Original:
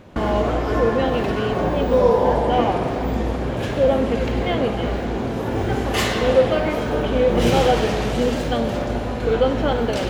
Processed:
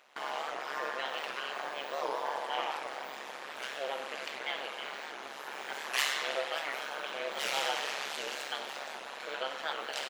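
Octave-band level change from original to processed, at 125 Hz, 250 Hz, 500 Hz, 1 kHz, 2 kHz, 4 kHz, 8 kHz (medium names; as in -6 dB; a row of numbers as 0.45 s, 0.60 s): under -40 dB, -32.0 dB, -21.5 dB, -13.0 dB, -7.0 dB, -6.0 dB, -6.0 dB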